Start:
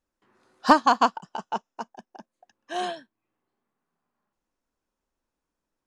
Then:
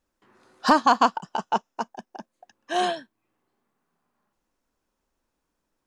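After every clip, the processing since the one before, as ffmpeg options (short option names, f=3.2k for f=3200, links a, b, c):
-af "alimiter=limit=-12.5dB:level=0:latency=1:release=74,volume=5.5dB"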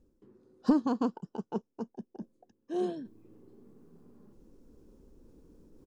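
-af "firequalizer=gain_entry='entry(450,0);entry(650,-18);entry(1900,-26);entry(4900,-20)':delay=0.05:min_phase=1,areverse,acompressor=mode=upward:threshold=-36dB:ratio=2.5,areverse"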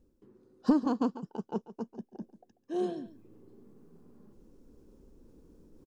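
-af "aecho=1:1:141:0.168"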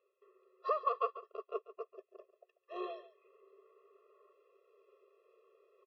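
-af "highpass=f=480:w=0.5412,highpass=f=480:w=1.3066,equalizer=f=500:t=q:w=4:g=-7,equalizer=f=770:t=q:w=4:g=-10,equalizer=f=1.1k:t=q:w=4:g=6,equalizer=f=1.7k:t=q:w=4:g=-5,equalizer=f=2.6k:t=q:w=4:g=7,lowpass=f=2.9k:w=0.5412,lowpass=f=2.9k:w=1.3066,afftfilt=real='re*eq(mod(floor(b*sr/1024/350),2),1)':imag='im*eq(mod(floor(b*sr/1024/350),2),1)':win_size=1024:overlap=0.75,volume=7.5dB"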